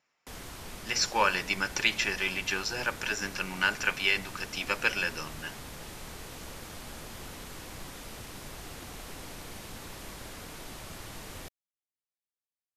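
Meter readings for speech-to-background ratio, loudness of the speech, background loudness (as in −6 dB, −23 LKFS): 14.5 dB, −29.0 LKFS, −43.5 LKFS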